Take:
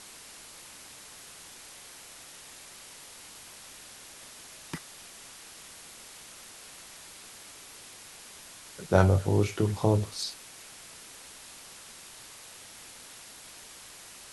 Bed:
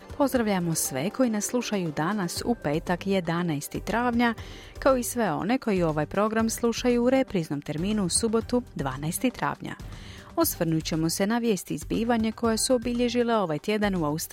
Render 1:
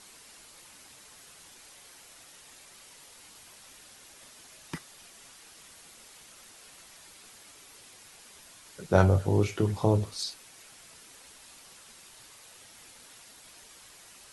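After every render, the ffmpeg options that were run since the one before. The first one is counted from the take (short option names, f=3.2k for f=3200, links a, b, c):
-af "afftdn=nr=6:nf=-49"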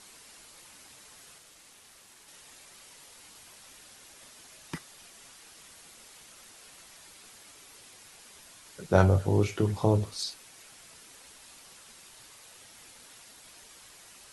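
-filter_complex "[0:a]asettb=1/sr,asplit=3[a][b][c];[a]atrim=end=1.384[d];[b]atrim=start=1.38:end=2.28,asetpts=PTS-STARTPTS,afade=t=in:d=0.004:c=qsin,afade=t=out:st=0.896:d=0.004:c=qsin,aeval=exprs='val(0)*sin(2*PI*310*n/s)':c=same[e];[c]atrim=start=2.276[f];[d][e]acrossfade=d=0.004:c1=hsin:c2=qsin[g];[g][f]acrossfade=d=0.004:c1=qsin:c2=hsin"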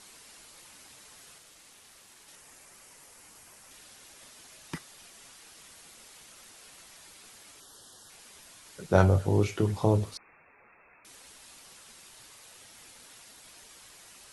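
-filter_complex "[0:a]asettb=1/sr,asplit=3[a][b][c];[a]atrim=end=2.354[d];[b]atrim=start=2.35:end=3.71,asetpts=PTS-STARTPTS,afade=t=in:d=0.004:c=qsin,afade=t=out:st=1.356:d=0.004:c=qsin,equalizer=f=3.7k:w=1.7:g=-7.5[e];[c]atrim=start=3.706[f];[d][e]acrossfade=d=0.004:c1=hsin:c2=qsin[g];[g][f]acrossfade=d=0.004:c1=qsin:c2=hsin,asettb=1/sr,asplit=3[h][i][j];[h]atrim=end=7.604[k];[i]atrim=start=7.6:end=8.1,asetpts=PTS-STARTPTS,afade=t=in:d=0.004:c=qsin,afade=t=out:st=0.496:d=0.004:c=qsin,asuperstop=centerf=2300:order=8:qfactor=2.1[l];[j]atrim=start=8.096[m];[k][l]acrossfade=d=0.004:c1=hsin:c2=qsin[n];[n][m]acrossfade=d=0.004:c1=qsin:c2=hsin,asettb=1/sr,asplit=3[o][p][q];[o]atrim=end=10.174[r];[p]atrim=start=10.17:end=11.05,asetpts=PTS-STARTPTS,afade=t=in:d=0.004:c=qsin,afade=t=out:st=0.876:d=0.004:c=qsin,lowpass=f=2.3k:t=q:w=0.5098,lowpass=f=2.3k:t=q:w=0.6013,lowpass=f=2.3k:t=q:w=0.9,lowpass=f=2.3k:t=q:w=2.563,afreqshift=-2700[s];[q]atrim=start=11.046[t];[r][s]acrossfade=d=0.004:c1=hsin:c2=qsin[u];[u][t]acrossfade=d=0.004:c1=qsin:c2=hsin"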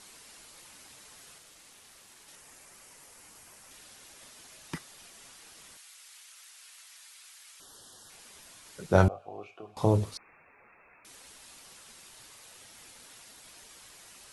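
-filter_complex "[0:a]asettb=1/sr,asplit=3[a][b][c];[a]atrim=end=5.774[d];[b]atrim=start=5.77:end=7.6,asetpts=PTS-STARTPTS,afade=t=in:d=0.004:c=qsin,afade=t=out:st=1.826:d=0.004:c=qsin,highpass=1.4k[e];[c]atrim=start=7.596[f];[d][e]acrossfade=d=0.004:c1=hsin:c2=qsin[g];[g][f]acrossfade=d=0.004:c1=qsin:c2=hsin,asettb=1/sr,asplit=3[h][i][j];[h]atrim=end=9.084[k];[i]atrim=start=9.08:end=9.77,asetpts=PTS-STARTPTS,afade=t=in:d=0.004:c=qsin,afade=t=out:st=0.686:d=0.004:c=qsin,asplit=3[l][m][n];[l]bandpass=f=730:t=q:w=8,volume=0dB[o];[m]bandpass=f=1.09k:t=q:w=8,volume=-6dB[p];[n]bandpass=f=2.44k:t=q:w=8,volume=-9dB[q];[o][p][q]amix=inputs=3:normalize=0[r];[j]atrim=start=9.766[s];[k][r]acrossfade=d=0.004:c1=hsin:c2=qsin[t];[t][s]acrossfade=d=0.004:c1=qsin:c2=hsin"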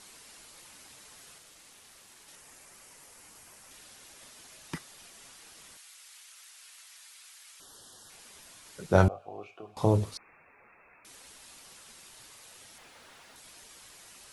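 -filter_complex "[0:a]asettb=1/sr,asplit=3[a][b][c];[a]atrim=end=12.784[d];[b]atrim=start=12.78:end=13.36,asetpts=PTS-STARTPTS,afade=t=in:d=0.004:c=qsin,afade=t=out:st=0.576:d=0.004:c=qsin,asplit=2[e][f];[f]highpass=f=720:p=1,volume=28dB,asoftclip=type=tanh:threshold=-40.5dB[g];[e][g]amix=inputs=2:normalize=0,lowpass=f=1.4k:p=1,volume=-6dB[h];[c]atrim=start=13.356[i];[d][h]acrossfade=d=0.004:c1=hsin:c2=qsin[j];[j][i]acrossfade=d=0.004:c1=qsin:c2=hsin"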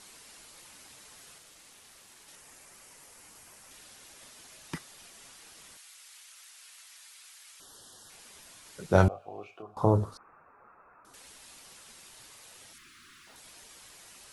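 -filter_complex "[0:a]asettb=1/sr,asplit=3[a][b][c];[a]atrim=end=9.624[d];[b]atrim=start=9.62:end=11.14,asetpts=PTS-STARTPTS,afade=t=in:d=0.004:c=qsin,afade=t=out:st=1.516:d=0.004:c=qsin,highshelf=f=1.7k:t=q:w=3:g=-9[e];[c]atrim=start=11.136[f];[d][e]acrossfade=d=0.004:c1=hsin:c2=qsin[g];[g][f]acrossfade=d=0.004:c1=qsin:c2=hsin,asettb=1/sr,asplit=3[h][i][j];[h]atrim=end=12.734[k];[i]atrim=start=12.73:end=13.27,asetpts=PTS-STARTPTS,afade=t=in:d=0.004:c=qsin,afade=t=out:st=0.536:d=0.004:c=qsin,asuperstop=centerf=640:order=12:qfactor=0.89[l];[j]atrim=start=13.266[m];[k][l]acrossfade=d=0.004:c1=hsin:c2=qsin[n];[n][m]acrossfade=d=0.004:c1=qsin:c2=hsin"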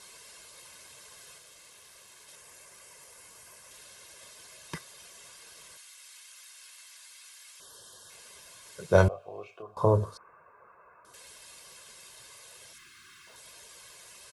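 -af "highpass=f=91:p=1,aecho=1:1:1.9:0.6"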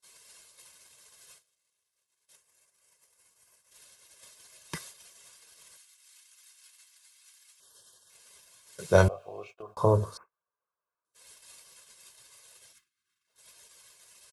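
-af "agate=range=-36dB:threshold=-49dB:ratio=16:detection=peak,highshelf=f=3.9k:g=6.5"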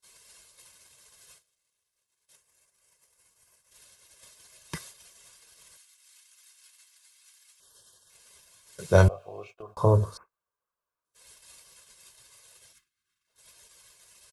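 -af "lowshelf=f=95:g=10.5"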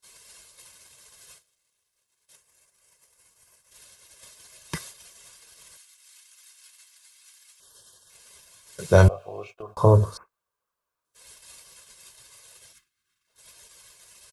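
-af "volume=4.5dB,alimiter=limit=-3dB:level=0:latency=1"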